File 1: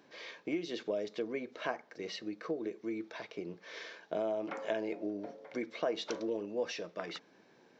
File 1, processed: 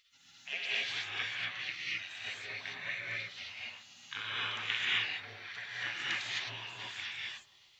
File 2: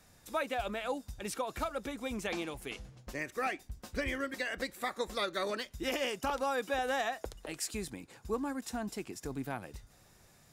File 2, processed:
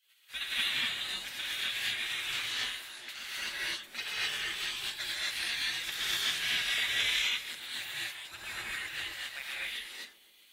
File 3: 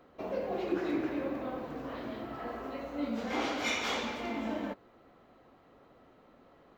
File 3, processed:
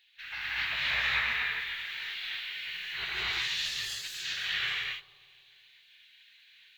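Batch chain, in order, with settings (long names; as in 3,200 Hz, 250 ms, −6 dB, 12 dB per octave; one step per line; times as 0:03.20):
notch filter 420 Hz, Q 12
gate on every frequency bin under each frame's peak −25 dB weak
flat-topped bell 2,500 Hz +13 dB
bucket-brigade delay 133 ms, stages 1,024, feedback 69%, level −16 dB
reverb whose tail is shaped and stops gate 290 ms rising, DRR −6.5 dB
level +2.5 dB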